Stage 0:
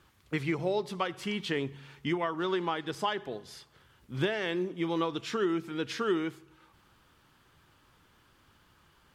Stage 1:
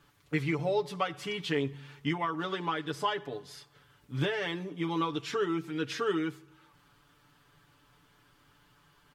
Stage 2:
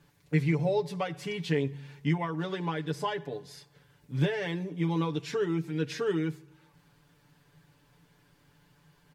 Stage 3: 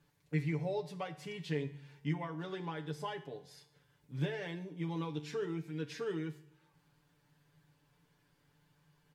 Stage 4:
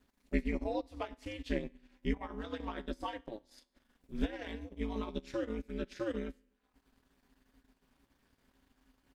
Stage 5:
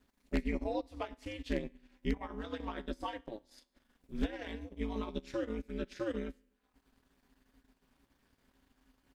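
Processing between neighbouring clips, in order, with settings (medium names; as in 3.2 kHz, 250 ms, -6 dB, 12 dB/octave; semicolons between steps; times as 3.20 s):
comb 6.9 ms, depth 87%; trim -2.5 dB
graphic EQ with 31 bands 160 Hz +10 dB, 500 Hz +4 dB, 1.25 kHz -10 dB, 3.15 kHz -5 dB
feedback comb 75 Hz, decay 0.58 s, harmonics all, mix 60%; trim -2.5 dB
transient shaper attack +2 dB, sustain -12 dB; ring modulator 110 Hz; trim +3.5 dB
wavefolder -21 dBFS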